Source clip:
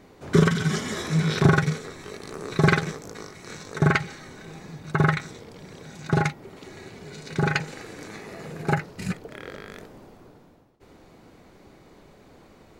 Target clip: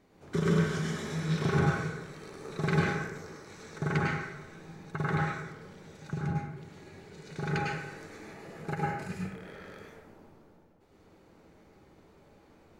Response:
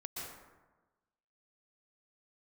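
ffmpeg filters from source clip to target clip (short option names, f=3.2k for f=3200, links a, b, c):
-filter_complex "[0:a]asettb=1/sr,asplit=3[a][b][c];[a]atrim=end=6.104[d];[b]atrim=start=6.1:end=7.17,asetpts=PTS-STARTPTS,afade=t=in:d=0.004:c=qsin,afade=t=out:st=1.066:d=0.004:c=qsin,acrossover=split=320[e][f];[f]acompressor=threshold=-42dB:ratio=2[g];[e][g]amix=inputs=2:normalize=0[h];[c]atrim=start=7.166[i];[d][h]acrossfade=d=0.004:c1=hsin:c2=qsin[j];[j][i]acrossfade=d=0.004:c1=qsin:c2=hsin[k];[1:a]atrim=start_sample=2205,asetrate=52920,aresample=44100[l];[k][l]afir=irnorm=-1:irlink=0,volume=-5.5dB"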